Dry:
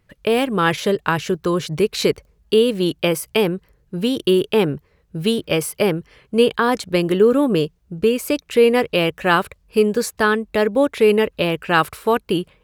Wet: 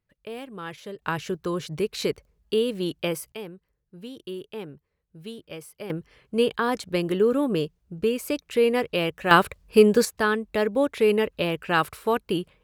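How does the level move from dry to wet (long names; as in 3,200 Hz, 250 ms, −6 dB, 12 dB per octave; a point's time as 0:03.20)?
−19 dB
from 0:01.02 −8.5 dB
from 0:03.32 −19.5 dB
from 0:05.90 −7 dB
from 0:09.31 +0.5 dB
from 0:10.05 −6 dB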